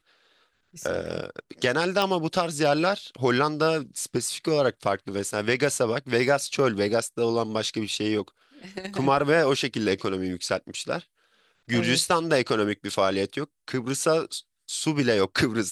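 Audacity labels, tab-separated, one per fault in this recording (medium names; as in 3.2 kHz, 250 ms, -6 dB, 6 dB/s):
2.020000	2.020000	pop -11 dBFS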